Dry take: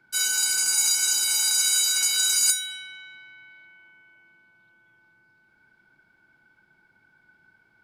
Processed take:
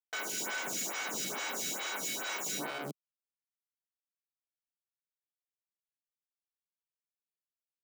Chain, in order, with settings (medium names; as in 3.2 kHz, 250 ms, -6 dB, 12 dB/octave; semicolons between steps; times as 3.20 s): band-stop 4.8 kHz, Q 26; in parallel at -0.5 dB: compression, threshold -34 dBFS, peak gain reduction 16 dB; on the sum: rippled Chebyshev low-pass 7.6 kHz, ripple 9 dB; treble shelf 4.9 kHz +8 dB; peak limiter -20 dBFS, peak gain reduction 7 dB; Schmitt trigger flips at -31.5 dBFS; high-pass 170 Hz 24 dB/octave; lamp-driven phase shifter 2.3 Hz; trim +1 dB